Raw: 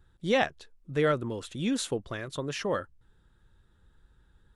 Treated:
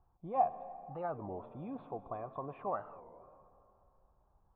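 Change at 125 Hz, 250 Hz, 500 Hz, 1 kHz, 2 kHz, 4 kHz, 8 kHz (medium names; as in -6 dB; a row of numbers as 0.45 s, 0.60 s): -13.5 dB, -14.5 dB, -10.5 dB, 0.0 dB, -23.5 dB, under -35 dB, under -40 dB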